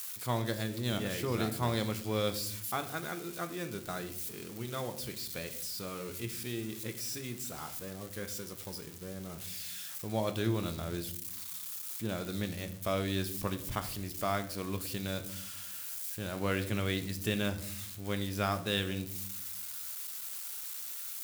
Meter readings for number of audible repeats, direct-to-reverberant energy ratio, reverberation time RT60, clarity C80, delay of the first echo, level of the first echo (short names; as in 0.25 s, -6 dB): none, 8.0 dB, 0.65 s, 16.5 dB, none, none